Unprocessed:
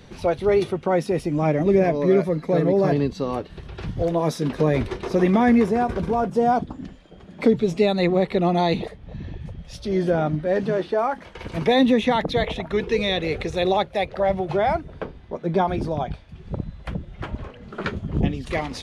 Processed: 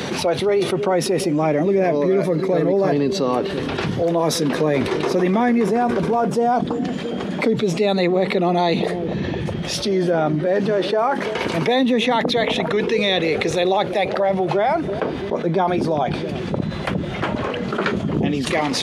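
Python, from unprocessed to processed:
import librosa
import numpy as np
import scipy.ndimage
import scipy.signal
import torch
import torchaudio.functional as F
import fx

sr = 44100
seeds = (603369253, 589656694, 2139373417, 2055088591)

p1 = scipy.signal.sosfilt(scipy.signal.butter(2, 200.0, 'highpass', fs=sr, output='sos'), x)
p2 = p1 + fx.echo_bbd(p1, sr, ms=336, stages=1024, feedback_pct=46, wet_db=-18.0, dry=0)
p3 = fx.env_flatten(p2, sr, amount_pct=70)
y = p3 * 10.0 ** (-2.0 / 20.0)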